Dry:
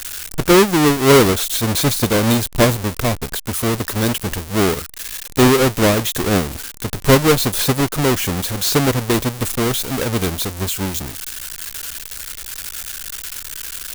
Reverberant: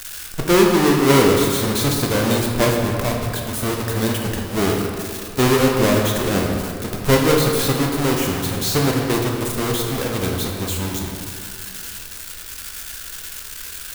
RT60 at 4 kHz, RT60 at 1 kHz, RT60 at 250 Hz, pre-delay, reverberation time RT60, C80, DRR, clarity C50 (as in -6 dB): 1.4 s, 2.4 s, 2.6 s, 14 ms, 2.4 s, 3.5 dB, 0.0 dB, 2.0 dB